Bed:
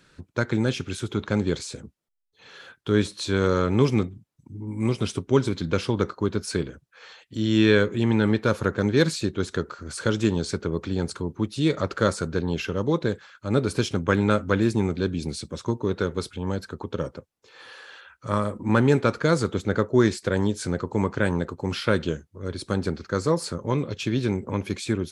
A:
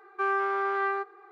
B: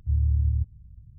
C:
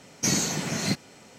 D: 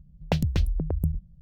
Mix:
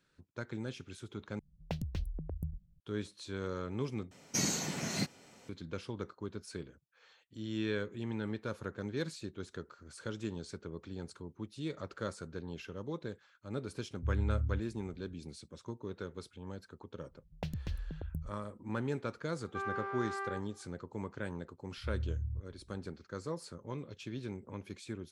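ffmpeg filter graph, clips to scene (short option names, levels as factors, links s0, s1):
-filter_complex "[4:a]asplit=2[s0][s1];[2:a]asplit=2[s2][s3];[0:a]volume=0.141,asplit=3[s4][s5][s6];[s4]atrim=end=1.394[s7];[s0]atrim=end=1.41,asetpts=PTS-STARTPTS,volume=0.211[s8];[s5]atrim=start=2.796:end=4.114[s9];[3:a]atrim=end=1.38,asetpts=PTS-STARTPTS,volume=0.398[s10];[s6]atrim=start=5.486[s11];[s2]atrim=end=1.18,asetpts=PTS-STARTPTS,volume=0.316,afade=t=in:d=0.004:c=hsin,afade=t=out:st=1.176:d=0.004:c=hsin,adelay=615636S[s12];[s1]atrim=end=1.41,asetpts=PTS-STARTPTS,volume=0.188,afade=t=in:d=0.004:c=hsin,afade=t=out:st=1.406:d=0.004:c=hsin,adelay=17110[s13];[1:a]atrim=end=1.31,asetpts=PTS-STARTPTS,volume=0.266,afade=t=in:d=0.004:c=hsin,afade=t=out:st=1.306:d=0.004:c=hsin,adelay=19360[s14];[s3]atrim=end=1.18,asetpts=PTS-STARTPTS,volume=0.2,afade=t=in:d=0.004:c=hsin,afade=t=out:st=1.176:d=0.004:c=hsin,adelay=21770[s15];[s7][s8]acrossfade=d=0.004:c1=hsin:c2=hsin[s16];[s16][s9]acrossfade=d=0.004:c1=hsin:c2=hsin[s17];[s17][s10]acrossfade=d=0.004:c1=hsin:c2=hsin[s18];[s18][s11]acrossfade=d=0.004:c1=hsin:c2=hsin[s19];[s19][s12][s13][s14][s15]amix=inputs=5:normalize=0"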